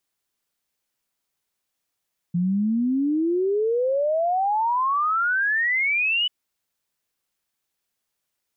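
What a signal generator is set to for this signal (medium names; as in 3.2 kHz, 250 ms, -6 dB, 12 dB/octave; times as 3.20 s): log sweep 170 Hz -> 3 kHz 3.94 s -19 dBFS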